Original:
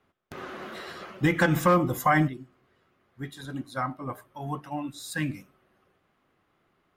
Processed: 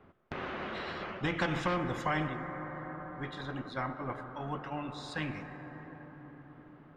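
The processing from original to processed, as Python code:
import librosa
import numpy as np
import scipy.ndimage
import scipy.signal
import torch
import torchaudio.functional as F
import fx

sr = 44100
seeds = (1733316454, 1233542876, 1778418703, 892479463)

y = fx.spacing_loss(x, sr, db_at_10k=37)
y = fx.rev_plate(y, sr, seeds[0], rt60_s=4.8, hf_ratio=0.4, predelay_ms=0, drr_db=15.5)
y = fx.spectral_comp(y, sr, ratio=2.0)
y = y * 10.0 ** (-6.0 / 20.0)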